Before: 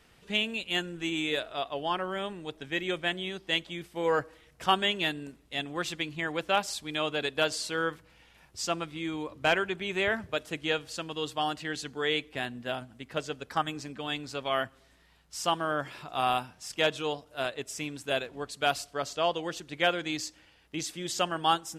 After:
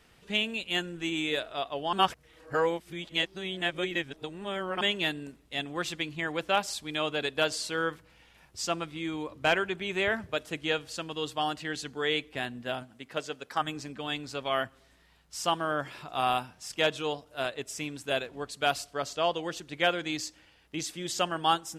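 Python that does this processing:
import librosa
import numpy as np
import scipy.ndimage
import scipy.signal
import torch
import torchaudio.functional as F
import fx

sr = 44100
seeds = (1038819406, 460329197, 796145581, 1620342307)

y = fx.highpass(x, sr, hz=fx.line((12.82, 170.0), (13.6, 370.0)), slope=6, at=(12.82, 13.6), fade=0.02)
y = fx.edit(y, sr, fx.reverse_span(start_s=1.93, length_s=2.88), tone=tone)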